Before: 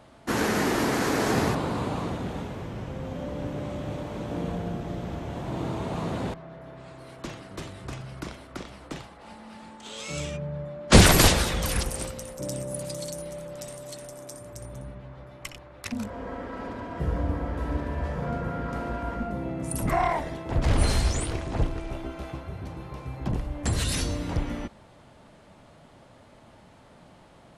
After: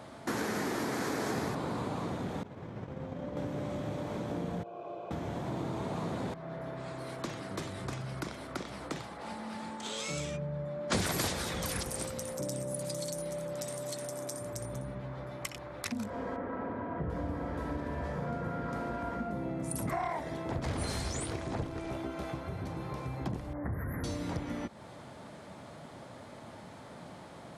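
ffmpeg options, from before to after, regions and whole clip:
ffmpeg -i in.wav -filter_complex "[0:a]asettb=1/sr,asplit=3[link_01][link_02][link_03];[link_01]atrim=end=2.434[link_04];[link_02]atrim=start=2.43:end=3.37,asetpts=PTS-STARTPTS,afade=type=in:duration=0.004:curve=qsin,afade=type=out:start_time=0.936:duration=0.004:curve=qsin,highshelf=frequency=5500:gain=-12,agate=range=-33dB:threshold=-28dB:ratio=3:release=100:detection=peak[link_05];[link_03]atrim=start=3.366[link_06];[link_04][link_05]acrossfade=duration=0.004:curve1=hsin:curve2=qsin[link_07];[link_07][link_06]acrossfade=duration=0.004:curve1=qsin:curve2=hsin,asettb=1/sr,asplit=3[link_08][link_09][link_10];[link_08]atrim=end=4.634[link_11];[link_09]atrim=start=4.63:end=5.11,asetpts=PTS-STARTPTS,afade=type=in:duration=0.004:curve=qsin,afade=type=out:start_time=0.476:duration=0.004:curve=qsin,asplit=3[link_12][link_13][link_14];[link_12]bandpass=frequency=730:width_type=q:width=8,volume=0dB[link_15];[link_13]bandpass=frequency=1090:width_type=q:width=8,volume=-6dB[link_16];[link_14]bandpass=frequency=2440:width_type=q:width=8,volume=-9dB[link_17];[link_15][link_16][link_17]amix=inputs=3:normalize=0,equalizer=frequency=340:width_type=o:width=0.36:gain=9.5,aecho=1:1:2:0.54,atrim=end_sample=21168[link_18];[link_10]atrim=start=5.106[link_19];[link_11][link_18]acrossfade=duration=0.004:curve1=hsin:curve2=qsin[link_20];[link_20][link_19]acrossfade=duration=0.004:curve1=qsin:curve2=hsin,asettb=1/sr,asplit=3[link_21][link_22][link_23];[link_21]atrim=end=16.364[link_24];[link_22]atrim=start=16.36:end=17.1,asetpts=PTS-STARTPTS,afade=type=in:duration=0.004:curve=qsin,afade=type=out:start_time=0.736:duration=0.004:curve=qsin,lowpass=2100,aemphasis=mode=reproduction:type=50fm[link_25];[link_23]atrim=start=17.096[link_26];[link_24][link_25]acrossfade=duration=0.004:curve1=hsin:curve2=qsin[link_27];[link_27][link_26]acrossfade=duration=0.004:curve1=qsin:curve2=hsin,asettb=1/sr,asplit=3[link_28][link_29][link_30];[link_28]atrim=end=23.534[link_31];[link_29]atrim=start=23.53:end=24.04,asetpts=PTS-STARTPTS,afade=type=in:duration=0.004:curve=qsin,afade=type=out:start_time=0.506:duration=0.004:curve=qsin,acrossover=split=150|3000[link_32][link_33][link_34];[link_33]acompressor=threshold=-34dB:ratio=3:attack=3.2:release=140:knee=2.83:detection=peak[link_35];[link_32][link_35][link_34]amix=inputs=3:normalize=0,asuperstop=centerf=5400:order=20:qfactor=0.54[link_36];[link_30]atrim=start=24.036[link_37];[link_31][link_36]acrossfade=duration=0.004:curve1=hsin:curve2=qsin[link_38];[link_38][link_37]acrossfade=duration=0.004:curve1=qsin:curve2=hsin,highpass=95,equalizer=frequency=2800:width_type=o:width=0.28:gain=-5,acompressor=threshold=-41dB:ratio=3,volume=5dB" out.wav

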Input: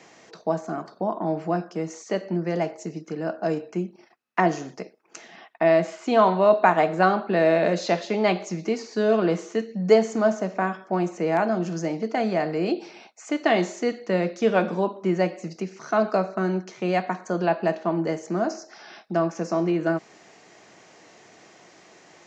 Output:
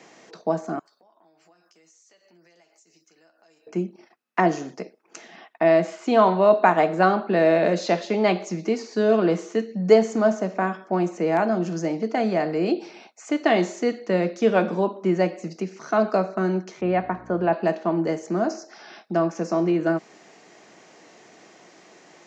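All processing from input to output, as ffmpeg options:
ffmpeg -i in.wav -filter_complex "[0:a]asettb=1/sr,asplit=3[link_01][link_02][link_03];[link_01]atrim=end=0.794[link_04];[link_02]atrim=start=0.79:end=3.67,asetpts=PTS-STARTPTS,afade=type=in:duration=0.004:curve=qsin,afade=type=out:start_time=2.876:duration=0.004:curve=qsin,aderivative,acompressor=threshold=-56dB:ratio=10:attack=3.2:release=140:knee=1:detection=peak,asplit=2[link_05][link_06];[link_06]adelay=12,volume=-7.5dB[link_07];[link_05][link_07]amix=inputs=2:normalize=0,atrim=end_sample=127008[link_08];[link_03]atrim=start=3.666[link_09];[link_04][link_08]acrossfade=duration=0.004:curve1=hsin:curve2=qsin[link_10];[link_10][link_09]acrossfade=duration=0.004:curve1=qsin:curve2=hsin,asettb=1/sr,asplit=3[link_11][link_12][link_13];[link_11]atrim=end=16.814[link_14];[link_12]atrim=start=16.81:end=17.53,asetpts=PTS-STARTPTS,afade=type=in:duration=0.004:curve=qsin,afade=type=out:start_time=0.716:duration=0.004:curve=qsin,lowpass=2200,aeval=exprs='val(0)+0.01*(sin(2*PI*60*n/s)+sin(2*PI*2*60*n/s)/2+sin(2*PI*3*60*n/s)/3+sin(2*PI*4*60*n/s)/4+sin(2*PI*5*60*n/s)/5)':channel_layout=same[link_15];[link_13]atrim=start=17.526[link_16];[link_14][link_15]acrossfade=duration=0.004:curve1=hsin:curve2=qsin[link_17];[link_17][link_16]acrossfade=duration=0.004:curve1=qsin:curve2=hsin,highpass=200,lowshelf=frequency=270:gain=7" out.wav

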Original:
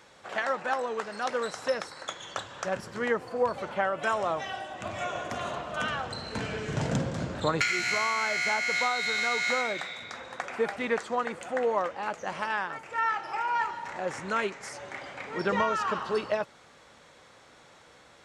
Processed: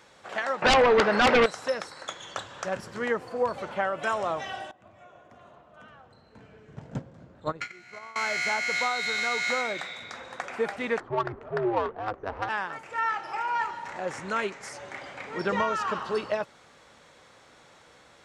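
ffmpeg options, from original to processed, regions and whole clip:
ffmpeg -i in.wav -filter_complex "[0:a]asettb=1/sr,asplit=3[link_01][link_02][link_03];[link_01]atrim=end=0.624[link_04];[link_02]atrim=start=0.62:end=1.46,asetpts=PTS-STARTPTS,afade=type=in:duration=0.004:curve=qsin,afade=type=out:start_time=0.836:duration=0.004:curve=qsin,highpass=120,lowpass=2600,aeval=exprs='0.168*sin(PI/2*4.47*val(0)/0.168)':channel_layout=same[link_05];[link_03]atrim=start=1.456[link_06];[link_04][link_05]acrossfade=duration=0.004:curve1=hsin:curve2=qsin[link_07];[link_07][link_06]acrossfade=duration=0.004:curve1=qsin:curve2=hsin,asettb=1/sr,asplit=3[link_08][link_09][link_10];[link_08]atrim=end=4.714[link_11];[link_09]atrim=start=4.71:end=8.16,asetpts=PTS-STARTPTS,afade=type=in:duration=0.004:curve=qsin,afade=type=out:start_time=3.446:duration=0.004:curve=qsin,agate=range=-17dB:threshold=-26dB:ratio=16:release=100:detection=peak,highshelf=frequency=2300:gain=-11.5[link_12];[link_10]atrim=start=8.156[link_13];[link_11][link_12]acrossfade=duration=0.004:curve1=hsin:curve2=qsin[link_14];[link_14][link_13]acrossfade=duration=0.004:curve1=qsin:curve2=hsin,asettb=1/sr,asplit=3[link_15][link_16][link_17];[link_15]atrim=end=11.004[link_18];[link_16]atrim=start=11:end=12.49,asetpts=PTS-STARTPTS,afade=type=in:duration=0.004:curve=qsin,afade=type=out:start_time=1.486:duration=0.004:curve=qsin,afreqshift=-100,equalizer=frequency=1200:width_type=o:width=1.3:gain=4,adynamicsmooth=sensitivity=1:basefreq=760[link_19];[link_17]atrim=start=12.486[link_20];[link_18][link_19]acrossfade=duration=0.004:curve1=hsin:curve2=qsin[link_21];[link_21][link_20]acrossfade=duration=0.004:curve1=qsin:curve2=hsin" out.wav

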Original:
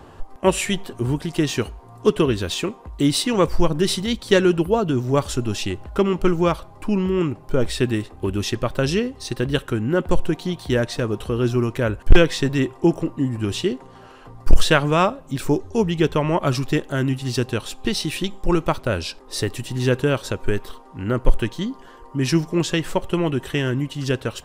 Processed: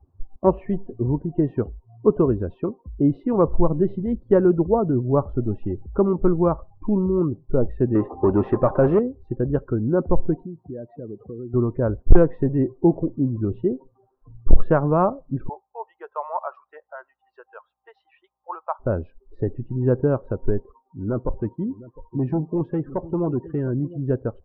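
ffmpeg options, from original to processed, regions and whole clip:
ffmpeg -i in.wav -filter_complex "[0:a]asettb=1/sr,asplit=3[link_01][link_02][link_03];[link_01]atrim=end=7.954[link_04];[link_02]atrim=start=7.95:end=8.99,asetpts=PTS-STARTPTS,afade=type=in:duration=0.004:curve=qsin,afade=type=out:start_time=1.036:duration=0.004:curve=qsin,highshelf=frequency=2600:gain=-4,asplit=2[link_05][link_06];[link_06]highpass=frequency=720:poles=1,volume=23dB,asoftclip=type=tanh:threshold=-7dB[link_07];[link_05][link_07]amix=inputs=2:normalize=0,lowpass=frequency=7100:poles=1,volume=-6dB[link_08];[link_03]atrim=start=8.986[link_09];[link_04][link_08]acrossfade=duration=0.004:curve1=hsin:curve2=qsin[link_10];[link_10][link_09]acrossfade=duration=0.004:curve1=qsin:curve2=hsin,asettb=1/sr,asplit=3[link_11][link_12][link_13];[link_11]atrim=end=10.434[link_14];[link_12]atrim=start=10.43:end=11.54,asetpts=PTS-STARTPTS,afade=type=in:duration=0.004:curve=qsin,afade=type=out:start_time=1.106:duration=0.004:curve=qsin,highshelf=frequency=4700:gain=-9,acompressor=threshold=-28dB:ratio=8:attack=3.2:release=140:knee=1:detection=peak,highpass=130,lowpass=7700[link_15];[link_13]atrim=start=11.536[link_16];[link_14][link_15]acrossfade=duration=0.004:curve1=hsin:curve2=qsin[link_17];[link_17][link_16]acrossfade=duration=0.004:curve1=qsin:curve2=hsin,asettb=1/sr,asplit=3[link_18][link_19][link_20];[link_18]atrim=end=15.494[link_21];[link_19]atrim=start=15.49:end=18.8,asetpts=PTS-STARTPTS,afade=type=in:duration=0.004:curve=qsin,afade=type=out:start_time=3.306:duration=0.004:curve=qsin,highpass=frequency=740:width=0.5412,highpass=frequency=740:width=1.3066,aeval=exprs='val(0)+0.000794*(sin(2*PI*60*n/s)+sin(2*PI*2*60*n/s)/2+sin(2*PI*3*60*n/s)/3+sin(2*PI*4*60*n/s)/4+sin(2*PI*5*60*n/s)/5)':channel_layout=same[link_22];[link_20]atrim=start=18.796[link_23];[link_21][link_22]acrossfade=duration=0.004:curve1=hsin:curve2=qsin[link_24];[link_24][link_23]acrossfade=duration=0.004:curve1=qsin:curve2=hsin,asettb=1/sr,asplit=3[link_25][link_26][link_27];[link_25]atrim=end=20.604[link_28];[link_26]atrim=start=20.6:end=23.98,asetpts=PTS-STARTPTS,afade=type=in:duration=0.004:curve=qsin,afade=type=out:start_time=3.376:duration=0.004:curve=qsin,highpass=frequency=69:poles=1,volume=18dB,asoftclip=hard,volume=-18dB,aecho=1:1:707:0.168,atrim=end_sample=149058[link_29];[link_27]atrim=start=23.976[link_30];[link_28][link_29]acrossfade=duration=0.004:curve1=hsin:curve2=qsin[link_31];[link_31][link_30]acrossfade=duration=0.004:curve1=qsin:curve2=hsin,afftdn=noise_reduction=31:noise_floor=-30,lowpass=frequency=1100:width=0.5412,lowpass=frequency=1100:width=1.3066" out.wav

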